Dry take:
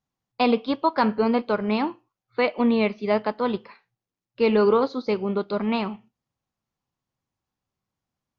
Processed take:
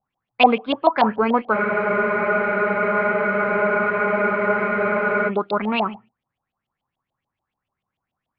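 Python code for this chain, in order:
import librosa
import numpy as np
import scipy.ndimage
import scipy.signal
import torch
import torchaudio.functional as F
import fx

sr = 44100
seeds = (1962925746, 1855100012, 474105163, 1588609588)

y = fx.filter_lfo_lowpass(x, sr, shape='saw_up', hz=6.9, low_hz=640.0, high_hz=3400.0, q=6.9)
y = fx.spec_freeze(y, sr, seeds[0], at_s=1.55, hold_s=3.73)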